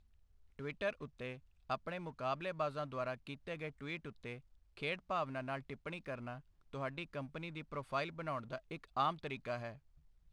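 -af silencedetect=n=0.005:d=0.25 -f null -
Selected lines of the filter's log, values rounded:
silence_start: 0.00
silence_end: 0.59 | silence_duration: 0.59
silence_start: 1.36
silence_end: 1.70 | silence_duration: 0.34
silence_start: 4.37
silence_end: 4.77 | silence_duration: 0.40
silence_start: 6.38
silence_end: 6.73 | silence_duration: 0.35
silence_start: 9.74
silence_end: 10.32 | silence_duration: 0.58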